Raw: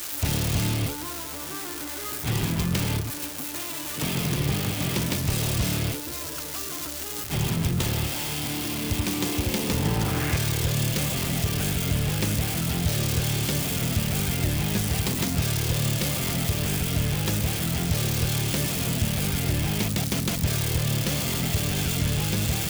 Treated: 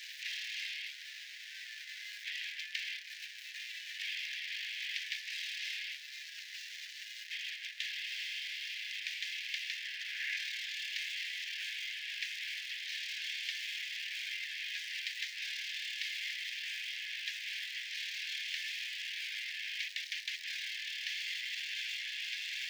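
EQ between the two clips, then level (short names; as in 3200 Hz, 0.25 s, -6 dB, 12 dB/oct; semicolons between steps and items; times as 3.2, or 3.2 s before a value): steep high-pass 1700 Hz 96 dB/oct; air absorption 240 m; 0.0 dB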